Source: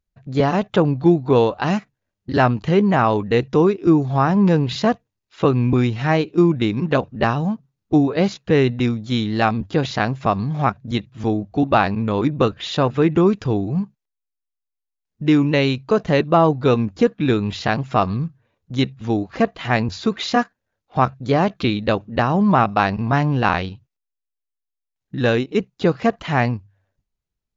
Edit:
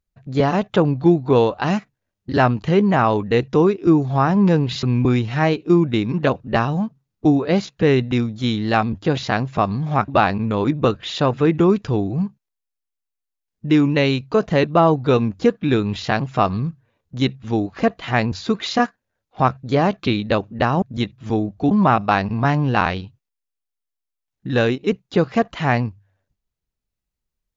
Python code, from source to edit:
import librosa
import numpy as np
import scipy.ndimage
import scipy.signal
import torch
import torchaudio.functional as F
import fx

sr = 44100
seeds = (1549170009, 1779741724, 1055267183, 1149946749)

y = fx.edit(x, sr, fx.cut(start_s=4.83, length_s=0.68),
    fx.move(start_s=10.76, length_s=0.89, to_s=22.39), tone=tone)